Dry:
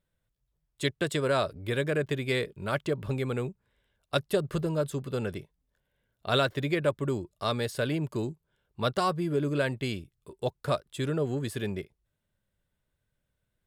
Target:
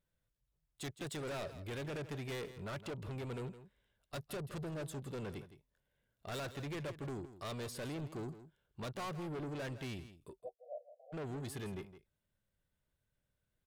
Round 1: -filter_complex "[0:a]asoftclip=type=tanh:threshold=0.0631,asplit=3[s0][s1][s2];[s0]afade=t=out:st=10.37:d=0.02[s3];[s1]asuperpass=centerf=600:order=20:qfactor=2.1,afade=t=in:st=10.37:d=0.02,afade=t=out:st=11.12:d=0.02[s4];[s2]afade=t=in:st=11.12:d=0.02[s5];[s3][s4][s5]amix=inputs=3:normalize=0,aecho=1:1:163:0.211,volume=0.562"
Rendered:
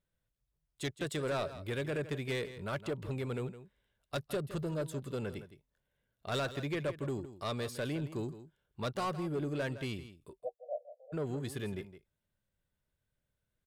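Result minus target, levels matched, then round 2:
saturation: distortion -8 dB
-filter_complex "[0:a]asoftclip=type=tanh:threshold=0.0188,asplit=3[s0][s1][s2];[s0]afade=t=out:st=10.37:d=0.02[s3];[s1]asuperpass=centerf=600:order=20:qfactor=2.1,afade=t=in:st=10.37:d=0.02,afade=t=out:st=11.12:d=0.02[s4];[s2]afade=t=in:st=11.12:d=0.02[s5];[s3][s4][s5]amix=inputs=3:normalize=0,aecho=1:1:163:0.211,volume=0.562"

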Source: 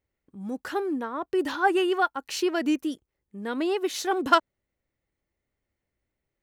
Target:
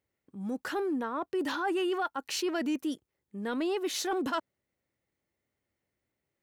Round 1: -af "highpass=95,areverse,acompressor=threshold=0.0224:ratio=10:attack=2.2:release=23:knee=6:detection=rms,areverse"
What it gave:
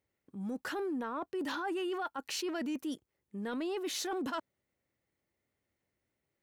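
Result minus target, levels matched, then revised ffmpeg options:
compression: peak gain reduction +6 dB
-af "highpass=95,areverse,acompressor=threshold=0.0473:ratio=10:attack=2.2:release=23:knee=6:detection=rms,areverse"

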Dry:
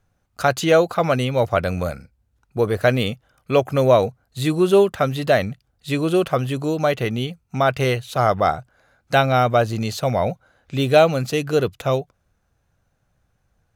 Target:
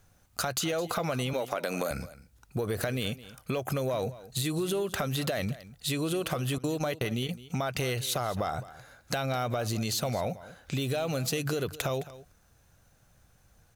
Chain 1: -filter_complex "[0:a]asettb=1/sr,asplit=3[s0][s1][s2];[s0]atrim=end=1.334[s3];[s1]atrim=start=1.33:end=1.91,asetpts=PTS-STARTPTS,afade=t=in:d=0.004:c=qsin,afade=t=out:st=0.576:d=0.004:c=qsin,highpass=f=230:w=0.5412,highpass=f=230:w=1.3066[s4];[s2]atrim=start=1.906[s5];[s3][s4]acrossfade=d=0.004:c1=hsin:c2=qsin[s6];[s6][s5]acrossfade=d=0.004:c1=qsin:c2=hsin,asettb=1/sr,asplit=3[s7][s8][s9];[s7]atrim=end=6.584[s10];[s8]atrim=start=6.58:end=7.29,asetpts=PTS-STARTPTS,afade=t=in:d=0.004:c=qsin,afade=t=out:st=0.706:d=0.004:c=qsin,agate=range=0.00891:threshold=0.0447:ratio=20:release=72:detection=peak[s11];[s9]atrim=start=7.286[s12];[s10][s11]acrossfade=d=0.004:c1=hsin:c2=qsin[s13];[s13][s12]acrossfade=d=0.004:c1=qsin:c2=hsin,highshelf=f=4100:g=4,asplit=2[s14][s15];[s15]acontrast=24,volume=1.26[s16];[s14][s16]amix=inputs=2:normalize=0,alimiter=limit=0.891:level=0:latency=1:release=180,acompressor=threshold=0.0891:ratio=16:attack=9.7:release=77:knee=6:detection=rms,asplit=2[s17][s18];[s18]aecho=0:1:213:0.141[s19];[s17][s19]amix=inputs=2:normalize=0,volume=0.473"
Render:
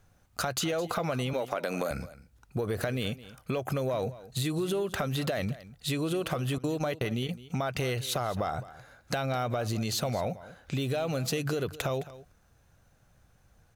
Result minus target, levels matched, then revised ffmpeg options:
8 kHz band -2.5 dB
-filter_complex "[0:a]asettb=1/sr,asplit=3[s0][s1][s2];[s0]atrim=end=1.334[s3];[s1]atrim=start=1.33:end=1.91,asetpts=PTS-STARTPTS,afade=t=in:d=0.004:c=qsin,afade=t=out:st=0.576:d=0.004:c=qsin,highpass=f=230:w=0.5412,highpass=f=230:w=1.3066[s4];[s2]atrim=start=1.906[s5];[s3][s4]acrossfade=d=0.004:c1=hsin:c2=qsin[s6];[s6][s5]acrossfade=d=0.004:c1=qsin:c2=hsin,asettb=1/sr,asplit=3[s7][s8][s9];[s7]atrim=end=6.584[s10];[s8]atrim=start=6.58:end=7.29,asetpts=PTS-STARTPTS,afade=t=in:d=0.004:c=qsin,afade=t=out:st=0.706:d=0.004:c=qsin,agate=range=0.00891:threshold=0.0447:ratio=20:release=72:detection=peak[s11];[s9]atrim=start=7.286[s12];[s10][s11]acrossfade=d=0.004:c1=hsin:c2=qsin[s13];[s13][s12]acrossfade=d=0.004:c1=qsin:c2=hsin,highshelf=f=4100:g=10.5,asplit=2[s14][s15];[s15]acontrast=24,volume=1.26[s16];[s14][s16]amix=inputs=2:normalize=0,alimiter=limit=0.891:level=0:latency=1:release=180,acompressor=threshold=0.0891:ratio=16:attack=9.7:release=77:knee=6:detection=rms,asplit=2[s17][s18];[s18]aecho=0:1:213:0.141[s19];[s17][s19]amix=inputs=2:normalize=0,volume=0.473"

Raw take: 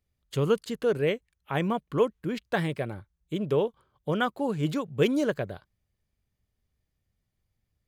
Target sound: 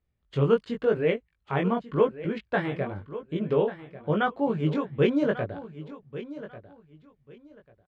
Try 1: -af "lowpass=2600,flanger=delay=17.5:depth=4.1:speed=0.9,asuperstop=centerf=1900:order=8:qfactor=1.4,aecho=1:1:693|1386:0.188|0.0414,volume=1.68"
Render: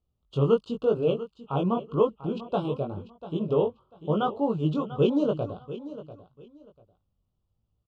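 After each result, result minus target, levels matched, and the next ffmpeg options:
2 kHz band -13.5 dB; echo 450 ms early
-af "lowpass=2600,flanger=delay=17.5:depth=4.1:speed=0.9,aecho=1:1:693|1386:0.188|0.0414,volume=1.68"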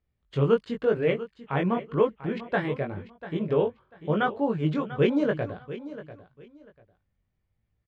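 echo 450 ms early
-af "lowpass=2600,flanger=delay=17.5:depth=4.1:speed=0.9,aecho=1:1:1143|2286:0.188|0.0414,volume=1.68"

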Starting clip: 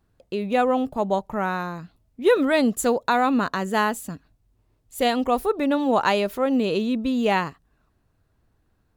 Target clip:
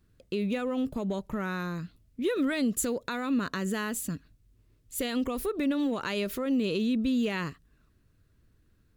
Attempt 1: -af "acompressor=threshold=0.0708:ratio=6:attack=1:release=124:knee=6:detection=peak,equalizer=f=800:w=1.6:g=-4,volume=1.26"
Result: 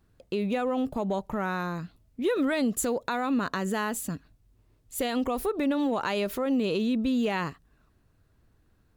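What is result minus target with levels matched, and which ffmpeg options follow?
1 kHz band +5.0 dB
-af "acompressor=threshold=0.0708:ratio=6:attack=1:release=124:knee=6:detection=peak,equalizer=f=800:w=1.6:g=-14.5,volume=1.26"

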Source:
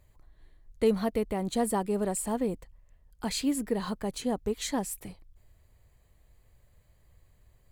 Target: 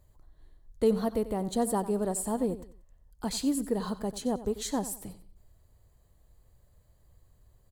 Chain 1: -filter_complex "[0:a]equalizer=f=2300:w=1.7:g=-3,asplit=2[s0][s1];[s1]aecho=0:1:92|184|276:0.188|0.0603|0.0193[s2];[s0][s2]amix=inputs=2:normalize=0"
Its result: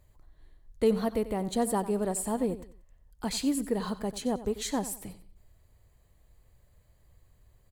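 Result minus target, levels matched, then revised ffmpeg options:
2 kHz band +4.0 dB
-filter_complex "[0:a]equalizer=f=2300:w=1.7:g=-10,asplit=2[s0][s1];[s1]aecho=0:1:92|184|276:0.188|0.0603|0.0193[s2];[s0][s2]amix=inputs=2:normalize=0"

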